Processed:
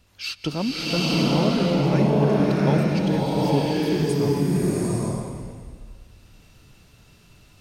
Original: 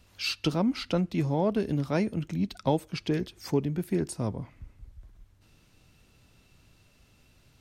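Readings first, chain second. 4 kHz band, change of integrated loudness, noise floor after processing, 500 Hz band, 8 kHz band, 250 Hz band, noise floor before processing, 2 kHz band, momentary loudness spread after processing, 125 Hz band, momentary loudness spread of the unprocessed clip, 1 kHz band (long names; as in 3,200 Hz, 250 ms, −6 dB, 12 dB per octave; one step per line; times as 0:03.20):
+8.5 dB, +7.5 dB, −54 dBFS, +8.0 dB, +8.5 dB, +8.0 dB, −62 dBFS, +8.0 dB, 10 LU, +9.0 dB, 5 LU, +8.0 dB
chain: slow-attack reverb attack 850 ms, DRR −7.5 dB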